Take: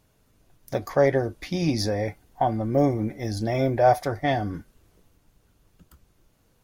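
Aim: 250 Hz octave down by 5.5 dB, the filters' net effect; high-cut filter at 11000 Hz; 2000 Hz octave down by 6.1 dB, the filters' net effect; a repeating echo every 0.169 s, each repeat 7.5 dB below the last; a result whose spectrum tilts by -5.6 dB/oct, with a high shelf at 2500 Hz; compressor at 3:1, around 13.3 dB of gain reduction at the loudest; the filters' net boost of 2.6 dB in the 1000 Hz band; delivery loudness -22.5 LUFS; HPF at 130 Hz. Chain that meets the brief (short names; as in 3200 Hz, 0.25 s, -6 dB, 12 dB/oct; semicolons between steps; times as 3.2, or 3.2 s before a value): HPF 130 Hz; LPF 11000 Hz; bell 250 Hz -7 dB; bell 1000 Hz +7 dB; bell 2000 Hz -8.5 dB; high shelf 2500 Hz -3.5 dB; compressor 3:1, threshold -30 dBFS; feedback echo 0.169 s, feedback 42%, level -7.5 dB; gain +10.5 dB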